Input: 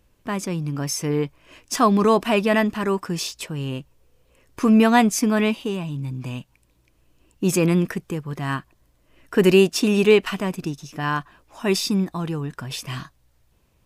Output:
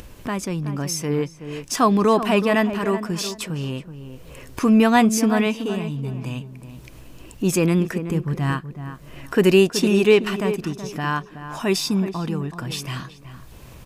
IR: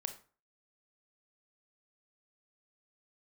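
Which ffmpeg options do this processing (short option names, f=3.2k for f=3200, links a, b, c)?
-filter_complex "[0:a]asettb=1/sr,asplit=3[a][b][c];[a]atrim=end=8.074[d];[b]atrim=start=8.07:end=8.52,asetpts=PTS-STARTPTS,afade=t=in:d=0.004:c=qsin,afade=t=out:st=0.446:d=0.004:c=qsin,lowshelf=f=240:g=8.5[e];[c]atrim=start=8.516[f];[d][e]acrossfade=d=0.004:c1=hsin:c2=qsin[g];[g][f]acrossfade=d=0.004:c1=qsin:c2=hsin,acompressor=mode=upward:threshold=-25dB:ratio=2.5,asplit=2[h][i];[i]adelay=375,lowpass=f=1.5k:p=1,volume=-10dB,asplit=2[j][k];[k]adelay=375,lowpass=f=1.5k:p=1,volume=0.25,asplit=2[l][m];[m]adelay=375,lowpass=f=1.5k:p=1,volume=0.25[n];[h][j][l][n]amix=inputs=4:normalize=0"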